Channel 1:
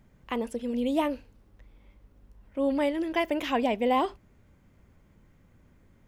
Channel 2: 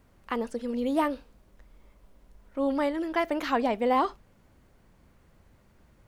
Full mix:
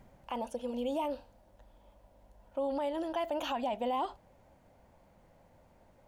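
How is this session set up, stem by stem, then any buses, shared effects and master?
+1.5 dB, 0.00 s, no send, auto duck -8 dB, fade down 0.30 s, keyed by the second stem
-6.0 dB, 0.00 s, no send, high-pass 200 Hz 12 dB/octave; compression, threshold -27 dBFS, peak gain reduction 7.5 dB; high-order bell 690 Hz +12 dB 1.1 oct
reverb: none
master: peak limiter -25.5 dBFS, peak gain reduction 8 dB

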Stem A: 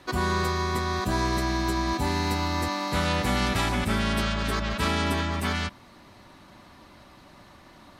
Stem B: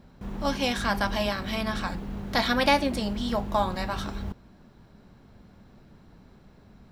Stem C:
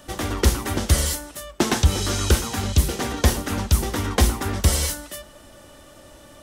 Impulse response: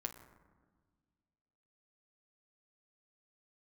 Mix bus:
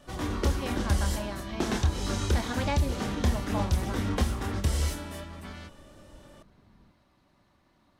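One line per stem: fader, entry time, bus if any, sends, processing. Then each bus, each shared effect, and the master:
-17.5 dB, 0.00 s, no send, none
-11.0 dB, 0.00 s, no send, boxcar filter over 5 samples
-5.5 dB, 0.00 s, no send, chorus voices 4, 1 Hz, delay 27 ms, depth 3.4 ms; compression 4:1, threshold -20 dBFS, peak gain reduction 6.5 dB; treble shelf 9.1 kHz -8.5 dB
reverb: none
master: bass shelf 440 Hz +4.5 dB

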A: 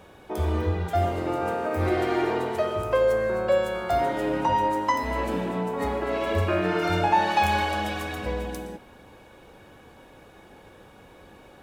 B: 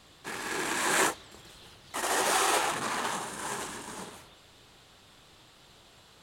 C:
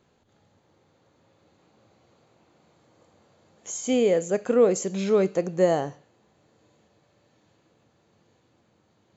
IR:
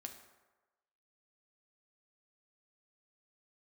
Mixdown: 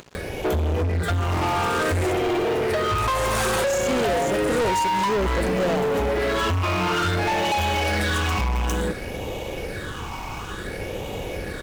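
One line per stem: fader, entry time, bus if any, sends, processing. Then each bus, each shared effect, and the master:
+2.5 dB, 0.15 s, bus A, no send, resonant low shelf 350 Hz -6.5 dB, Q 1.5; phase shifter stages 8, 0.57 Hz, lowest notch 500–1500 Hz
3.14 s -14.5 dB -> 3.59 s -5.5 dB, 1.05 s, bus A, send -8 dB, reverb removal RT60 1.7 s
-12.5 dB, 0.00 s, no bus, no send, none
bus A: 0.0 dB, bass shelf 190 Hz +8 dB; compression 10:1, threshold -31 dBFS, peak gain reduction 16.5 dB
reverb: on, RT60 1.2 s, pre-delay 4 ms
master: upward compressor, threshold -45 dBFS; waveshaping leveller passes 5

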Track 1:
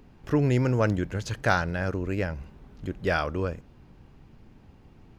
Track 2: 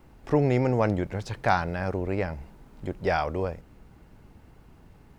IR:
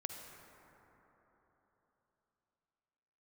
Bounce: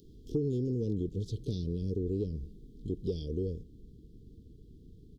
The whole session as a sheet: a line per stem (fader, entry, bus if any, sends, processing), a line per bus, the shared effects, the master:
-5.0 dB, 0.00 s, no send, spectral gate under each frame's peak -10 dB weak; upward compressor, threshold -48 dBFS; auto duck -13 dB, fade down 1.30 s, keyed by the second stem
0.0 dB, 22 ms, polarity flipped, no send, treble shelf 3.8 kHz -11.5 dB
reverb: none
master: Chebyshev band-stop 450–3300 Hz, order 5; compression, threshold -28 dBFS, peak gain reduction 9 dB

